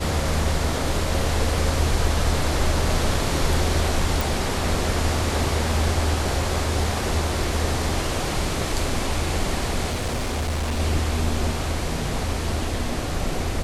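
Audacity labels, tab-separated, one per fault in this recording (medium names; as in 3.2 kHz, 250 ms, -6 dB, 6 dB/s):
4.210000	4.210000	pop
9.870000	10.800000	clipped -21 dBFS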